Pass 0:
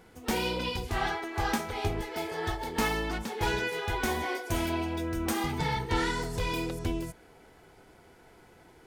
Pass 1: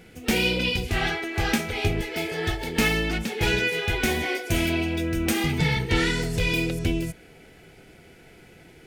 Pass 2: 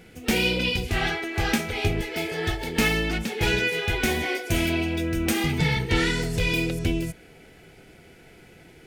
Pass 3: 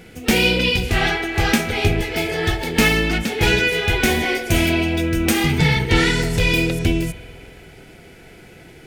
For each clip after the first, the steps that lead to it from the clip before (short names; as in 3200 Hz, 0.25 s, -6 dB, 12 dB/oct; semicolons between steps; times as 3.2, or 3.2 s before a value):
fifteen-band EQ 160 Hz +5 dB, 1000 Hz -12 dB, 2500 Hz +7 dB; gain +6 dB
nothing audible
reverb RT60 2.4 s, pre-delay 47 ms, DRR 12.5 dB; gain +6.5 dB